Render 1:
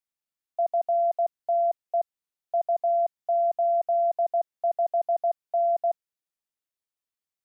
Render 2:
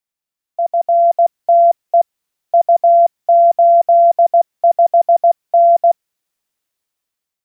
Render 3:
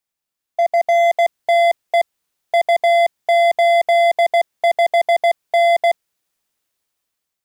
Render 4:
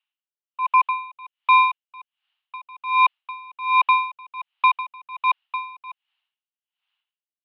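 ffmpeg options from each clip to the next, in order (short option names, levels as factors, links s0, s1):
-af "dynaudnorm=f=350:g=5:m=2.82,volume=1.78"
-af "asoftclip=type=hard:threshold=0.188,volume=1.33"
-af "highpass=f=440:t=q:w=0.5412,highpass=f=440:t=q:w=1.307,lowpass=f=3500:t=q:w=0.5176,lowpass=f=3500:t=q:w=0.7071,lowpass=f=3500:t=q:w=1.932,afreqshift=340,equalizer=f=2900:t=o:w=0.33:g=14,aeval=exprs='val(0)*pow(10,-28*(0.5-0.5*cos(2*PI*1.3*n/s))/20)':c=same"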